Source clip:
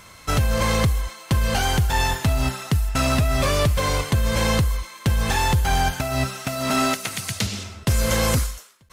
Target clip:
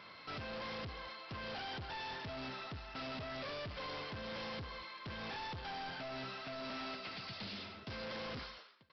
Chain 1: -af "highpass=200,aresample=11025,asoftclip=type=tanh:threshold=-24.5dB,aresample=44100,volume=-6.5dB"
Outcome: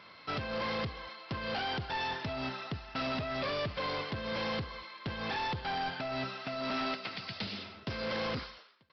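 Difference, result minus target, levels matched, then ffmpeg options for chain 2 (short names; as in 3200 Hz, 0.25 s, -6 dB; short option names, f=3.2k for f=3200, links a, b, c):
soft clip: distortion -6 dB
-af "highpass=200,aresample=11025,asoftclip=type=tanh:threshold=-36dB,aresample=44100,volume=-6.5dB"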